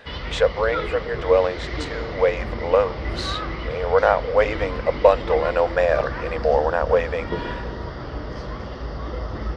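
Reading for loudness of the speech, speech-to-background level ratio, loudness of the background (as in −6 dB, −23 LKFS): −21.5 LKFS, 9.0 dB, −30.5 LKFS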